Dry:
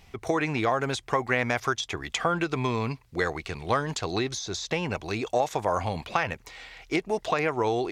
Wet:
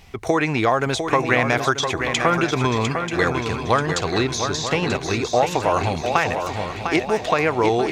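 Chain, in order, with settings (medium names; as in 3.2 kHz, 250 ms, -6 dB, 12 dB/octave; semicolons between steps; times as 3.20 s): shuffle delay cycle 936 ms, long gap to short 3:1, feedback 40%, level -7 dB; trim +6.5 dB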